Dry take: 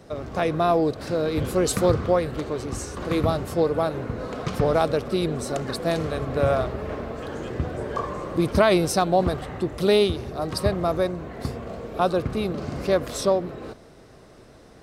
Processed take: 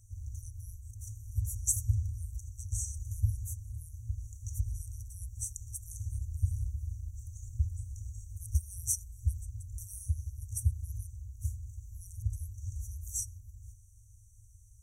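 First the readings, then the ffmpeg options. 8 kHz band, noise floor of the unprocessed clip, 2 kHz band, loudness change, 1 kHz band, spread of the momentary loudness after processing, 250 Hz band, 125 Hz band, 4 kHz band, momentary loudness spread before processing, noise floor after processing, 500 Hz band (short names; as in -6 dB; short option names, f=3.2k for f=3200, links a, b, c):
0.0 dB, -49 dBFS, under -40 dB, -13.0 dB, under -40 dB, 12 LU, under -35 dB, -5.5 dB, under -25 dB, 11 LU, -57 dBFS, under -40 dB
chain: -af "afftfilt=real='re*(1-between(b*sr/4096,110,5700))':imag='im*(1-between(b*sr/4096,110,5700))':win_size=4096:overlap=0.75"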